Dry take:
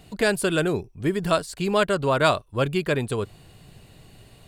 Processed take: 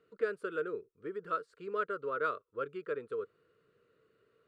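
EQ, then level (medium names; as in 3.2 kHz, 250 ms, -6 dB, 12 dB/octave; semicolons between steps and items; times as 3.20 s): two resonant band-passes 780 Hz, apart 1.5 oct; -5.5 dB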